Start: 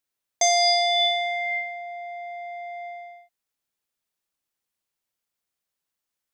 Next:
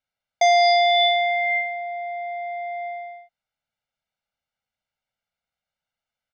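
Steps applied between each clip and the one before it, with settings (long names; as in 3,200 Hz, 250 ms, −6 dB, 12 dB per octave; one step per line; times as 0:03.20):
low-pass filter 3,400 Hz 12 dB per octave
comb filter 1.4 ms, depth 92%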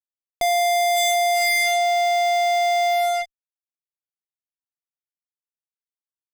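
parametric band 1,000 Hz −8.5 dB 0.25 octaves
fuzz pedal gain 46 dB, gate −48 dBFS
level −5.5 dB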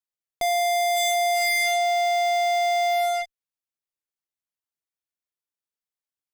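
brickwall limiter −20.5 dBFS, peak gain reduction 4 dB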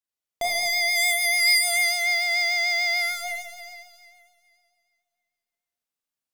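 four-comb reverb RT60 2.2 s, combs from 27 ms, DRR −4 dB
pitch vibrato 6.8 Hz 34 cents
level −2 dB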